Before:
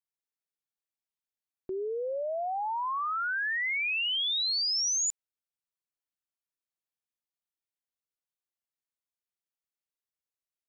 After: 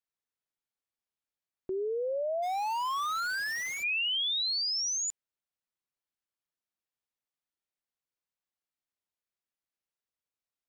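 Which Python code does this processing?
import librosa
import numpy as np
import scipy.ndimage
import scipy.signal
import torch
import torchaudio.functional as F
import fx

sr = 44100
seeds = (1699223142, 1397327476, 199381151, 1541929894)

y = fx.dead_time(x, sr, dead_ms=0.13, at=(2.42, 3.82), fade=0.02)
y = fx.high_shelf(y, sr, hz=6400.0, db=-9.0)
y = y * 10.0 ** (1.0 / 20.0)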